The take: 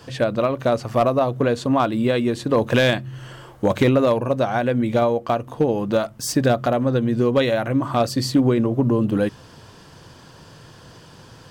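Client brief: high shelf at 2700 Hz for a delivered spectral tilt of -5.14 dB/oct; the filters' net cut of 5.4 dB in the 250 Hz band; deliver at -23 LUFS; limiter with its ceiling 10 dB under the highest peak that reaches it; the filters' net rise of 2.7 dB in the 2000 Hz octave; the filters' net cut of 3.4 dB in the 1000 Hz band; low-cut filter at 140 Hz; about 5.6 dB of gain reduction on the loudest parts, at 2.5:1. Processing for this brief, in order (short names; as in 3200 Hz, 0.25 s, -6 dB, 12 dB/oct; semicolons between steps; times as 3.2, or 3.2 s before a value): HPF 140 Hz; bell 250 Hz -5.5 dB; bell 1000 Hz -6 dB; bell 2000 Hz +7 dB; high shelf 2700 Hz -3 dB; compressor 2.5:1, threshold -24 dBFS; gain +8 dB; limiter -12 dBFS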